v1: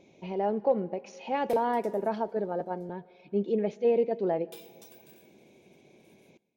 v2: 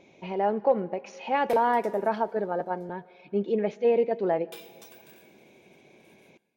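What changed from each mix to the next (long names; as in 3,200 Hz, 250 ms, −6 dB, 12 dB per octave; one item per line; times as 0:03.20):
background: send +9.5 dB
master: add parametric band 1,500 Hz +8 dB 2.1 octaves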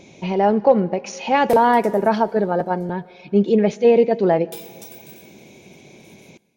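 speech +8.0 dB
master: add bass and treble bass +8 dB, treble +12 dB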